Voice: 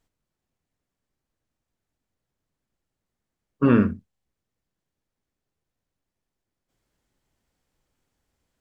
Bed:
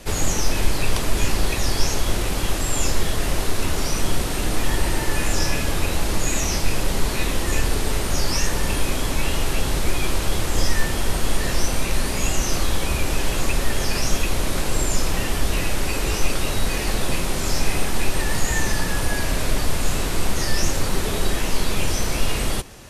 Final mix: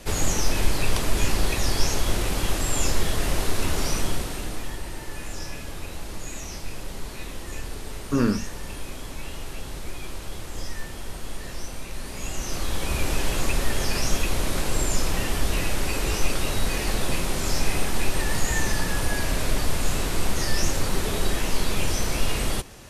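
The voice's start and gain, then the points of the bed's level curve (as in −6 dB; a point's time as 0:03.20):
4.50 s, −4.5 dB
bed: 0:03.92 −2 dB
0:04.81 −13 dB
0:11.94 −13 dB
0:13.03 −2.5 dB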